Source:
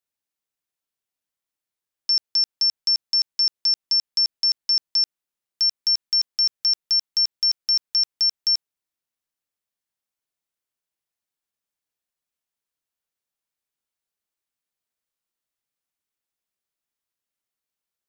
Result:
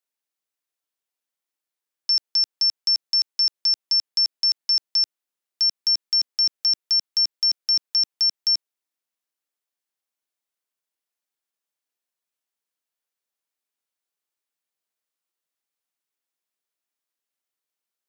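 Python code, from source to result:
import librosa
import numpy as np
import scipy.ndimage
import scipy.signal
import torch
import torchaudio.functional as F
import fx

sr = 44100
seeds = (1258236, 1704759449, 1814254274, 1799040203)

y = scipy.signal.sosfilt(scipy.signal.butter(2, 260.0, 'highpass', fs=sr, output='sos'), x)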